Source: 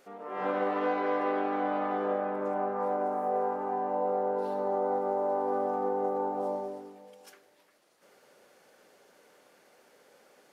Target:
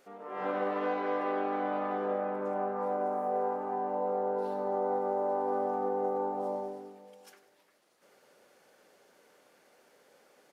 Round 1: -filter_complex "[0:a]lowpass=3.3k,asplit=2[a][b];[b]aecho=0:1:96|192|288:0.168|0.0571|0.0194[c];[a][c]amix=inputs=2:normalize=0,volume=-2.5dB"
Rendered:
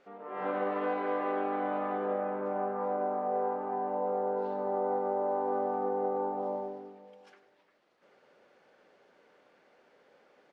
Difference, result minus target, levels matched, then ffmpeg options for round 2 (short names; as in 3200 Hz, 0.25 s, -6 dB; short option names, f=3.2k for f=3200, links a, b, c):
4000 Hz band -3.0 dB
-filter_complex "[0:a]asplit=2[a][b];[b]aecho=0:1:96|192|288:0.168|0.0571|0.0194[c];[a][c]amix=inputs=2:normalize=0,volume=-2.5dB"